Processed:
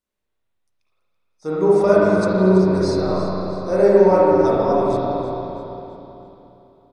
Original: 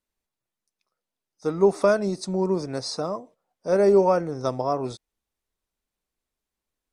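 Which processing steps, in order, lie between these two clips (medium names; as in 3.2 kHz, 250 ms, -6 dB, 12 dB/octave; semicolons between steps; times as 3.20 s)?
frequency-shifting echo 331 ms, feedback 42%, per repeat -93 Hz, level -13 dB; spring tank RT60 3.2 s, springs 32/49/59 ms, chirp 30 ms, DRR -8 dB; trim -2.5 dB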